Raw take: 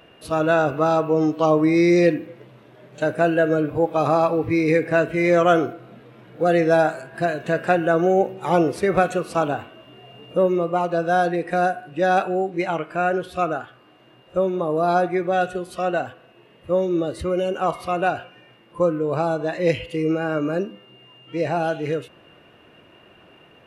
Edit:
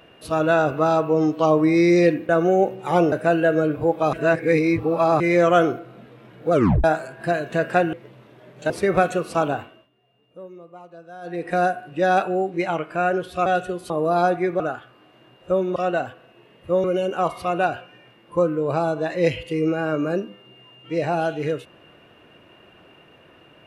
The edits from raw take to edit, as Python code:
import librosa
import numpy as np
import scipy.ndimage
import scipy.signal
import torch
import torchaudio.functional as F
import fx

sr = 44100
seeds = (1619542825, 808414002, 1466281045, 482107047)

y = fx.edit(x, sr, fx.swap(start_s=2.29, length_s=0.77, other_s=7.87, other_length_s=0.83),
    fx.reverse_span(start_s=4.07, length_s=1.07),
    fx.tape_stop(start_s=6.46, length_s=0.32),
    fx.fade_down_up(start_s=9.59, length_s=1.92, db=-21.0, fade_s=0.3),
    fx.swap(start_s=13.46, length_s=1.16, other_s=15.32, other_length_s=0.44),
    fx.cut(start_s=16.84, length_s=0.43), tone=tone)